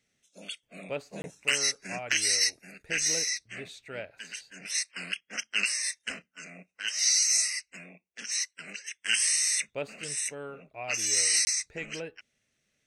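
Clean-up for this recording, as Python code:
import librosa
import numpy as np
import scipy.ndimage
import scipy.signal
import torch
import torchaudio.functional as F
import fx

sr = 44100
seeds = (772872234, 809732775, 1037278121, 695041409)

y = fx.fix_interpolate(x, sr, at_s=(1.22, 11.45), length_ms=20.0)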